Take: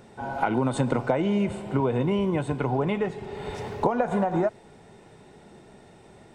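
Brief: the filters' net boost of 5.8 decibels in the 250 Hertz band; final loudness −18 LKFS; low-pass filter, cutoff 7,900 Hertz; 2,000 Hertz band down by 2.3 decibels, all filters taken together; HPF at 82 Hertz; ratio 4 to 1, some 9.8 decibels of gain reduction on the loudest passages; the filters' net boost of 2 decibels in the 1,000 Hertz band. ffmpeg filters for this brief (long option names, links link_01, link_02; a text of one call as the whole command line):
ffmpeg -i in.wav -af "highpass=82,lowpass=7900,equalizer=frequency=250:width_type=o:gain=7.5,equalizer=frequency=1000:width_type=o:gain=3,equalizer=frequency=2000:width_type=o:gain=-5,acompressor=threshold=-27dB:ratio=4,volume=12.5dB" out.wav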